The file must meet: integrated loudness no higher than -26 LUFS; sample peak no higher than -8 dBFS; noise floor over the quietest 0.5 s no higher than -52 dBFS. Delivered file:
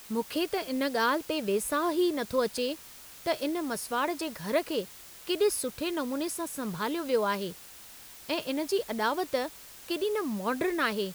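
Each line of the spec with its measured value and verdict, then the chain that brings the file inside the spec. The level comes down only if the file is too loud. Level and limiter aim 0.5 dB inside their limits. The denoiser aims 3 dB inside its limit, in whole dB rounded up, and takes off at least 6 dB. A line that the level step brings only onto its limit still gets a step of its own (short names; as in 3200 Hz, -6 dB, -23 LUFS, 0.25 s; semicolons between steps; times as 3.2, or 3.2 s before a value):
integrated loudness -30.5 LUFS: OK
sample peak -14.0 dBFS: OK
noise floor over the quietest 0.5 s -49 dBFS: fail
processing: denoiser 6 dB, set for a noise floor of -49 dBFS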